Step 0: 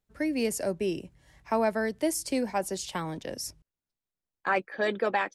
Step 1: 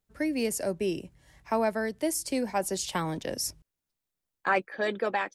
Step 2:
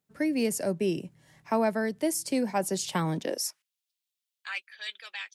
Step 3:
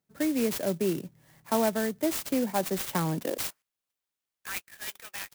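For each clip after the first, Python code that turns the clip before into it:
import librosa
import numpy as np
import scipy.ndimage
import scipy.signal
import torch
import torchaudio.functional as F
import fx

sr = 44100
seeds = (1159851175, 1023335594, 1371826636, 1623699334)

y1 = fx.high_shelf(x, sr, hz=7900.0, db=4.0)
y1 = fx.rider(y1, sr, range_db=3, speed_s=0.5)
y2 = fx.filter_sweep_highpass(y1, sr, from_hz=150.0, to_hz=3100.0, start_s=3.18, end_s=3.68, q=1.7)
y3 = fx.clock_jitter(y2, sr, seeds[0], jitter_ms=0.069)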